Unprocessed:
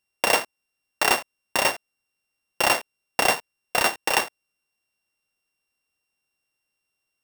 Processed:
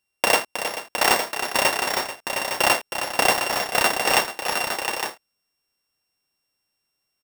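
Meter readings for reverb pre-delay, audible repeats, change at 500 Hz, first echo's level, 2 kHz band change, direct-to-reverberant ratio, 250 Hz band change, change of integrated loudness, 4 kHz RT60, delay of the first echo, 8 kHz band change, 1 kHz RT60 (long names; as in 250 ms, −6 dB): no reverb audible, 5, +3.5 dB, −9.0 dB, +3.0 dB, no reverb audible, +3.5 dB, +1.5 dB, no reverb audible, 316 ms, +3.0 dB, no reverb audible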